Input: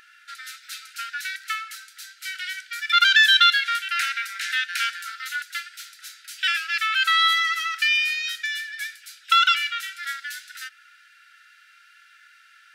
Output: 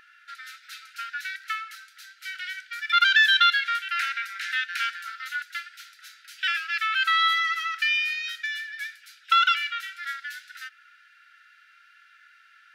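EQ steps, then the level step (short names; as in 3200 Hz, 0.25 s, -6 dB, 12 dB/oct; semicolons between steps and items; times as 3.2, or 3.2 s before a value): high shelf 3400 Hz -9.5 dB; bell 8300 Hz -4 dB 0.51 oct; 0.0 dB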